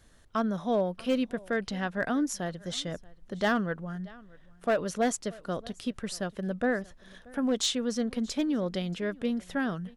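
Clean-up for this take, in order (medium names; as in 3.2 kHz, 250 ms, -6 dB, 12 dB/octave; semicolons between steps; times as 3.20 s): clip repair -19.5 dBFS; expander -45 dBFS, range -21 dB; inverse comb 631 ms -23.5 dB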